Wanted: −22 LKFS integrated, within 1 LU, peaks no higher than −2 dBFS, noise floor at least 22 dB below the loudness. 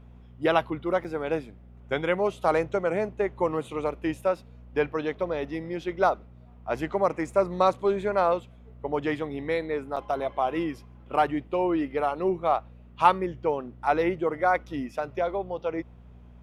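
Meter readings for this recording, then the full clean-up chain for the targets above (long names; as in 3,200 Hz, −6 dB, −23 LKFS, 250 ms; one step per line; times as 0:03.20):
number of dropouts 2; longest dropout 6.6 ms; mains hum 60 Hz; hum harmonics up to 240 Hz; level of the hum −46 dBFS; integrated loudness −27.5 LKFS; sample peak −4.5 dBFS; target loudness −22.0 LKFS
→ repair the gap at 0:01.04/0:09.96, 6.6 ms
hum removal 60 Hz, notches 4
level +5.5 dB
brickwall limiter −2 dBFS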